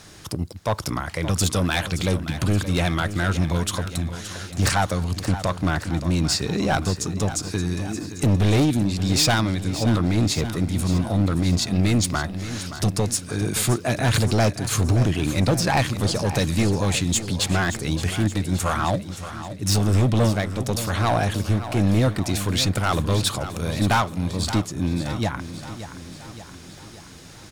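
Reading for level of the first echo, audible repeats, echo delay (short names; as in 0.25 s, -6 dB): -12.0 dB, 5, 0.573 s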